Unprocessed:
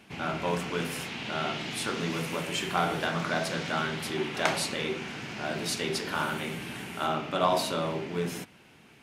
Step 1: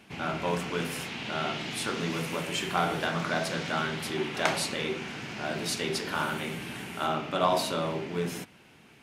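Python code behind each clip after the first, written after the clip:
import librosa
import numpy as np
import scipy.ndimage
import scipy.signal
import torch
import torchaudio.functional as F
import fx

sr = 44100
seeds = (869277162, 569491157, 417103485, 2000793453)

y = x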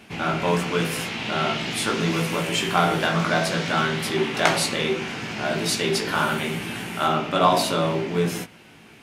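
y = fx.doubler(x, sr, ms=18.0, db=-6.5)
y = y * librosa.db_to_amplitude(6.5)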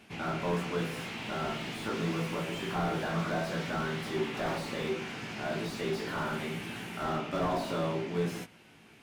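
y = fx.slew_limit(x, sr, full_power_hz=78.0)
y = y * librosa.db_to_amplitude(-8.5)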